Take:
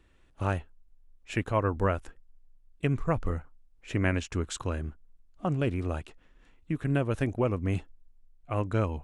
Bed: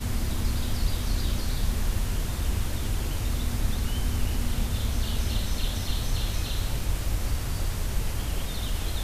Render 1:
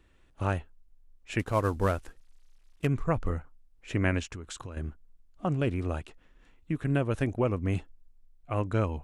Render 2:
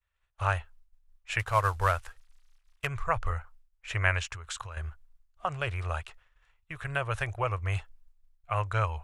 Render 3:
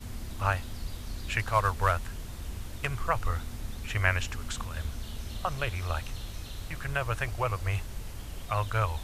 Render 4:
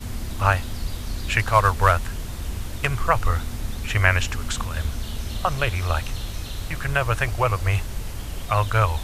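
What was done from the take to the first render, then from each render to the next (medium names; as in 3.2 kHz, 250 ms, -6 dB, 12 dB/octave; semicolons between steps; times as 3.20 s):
1.39–2.87 s: CVSD coder 64 kbps; 4.26–4.77 s: compression 8:1, threshold -36 dBFS
FFT filter 110 Hz 0 dB, 250 Hz -30 dB, 390 Hz -11 dB, 610 Hz -1 dB, 1.2 kHz +7 dB, 6.2 kHz +3 dB; expander -49 dBFS
add bed -11 dB
trim +8.5 dB; peak limiter -2 dBFS, peak gain reduction 1.5 dB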